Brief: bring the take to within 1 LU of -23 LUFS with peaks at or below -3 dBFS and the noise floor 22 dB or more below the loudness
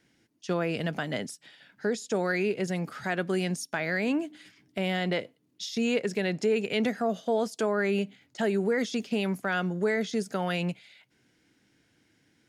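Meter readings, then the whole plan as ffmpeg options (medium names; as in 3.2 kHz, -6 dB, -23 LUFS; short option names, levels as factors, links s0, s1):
loudness -29.5 LUFS; peak level -15.5 dBFS; loudness target -23.0 LUFS
-> -af "volume=2.11"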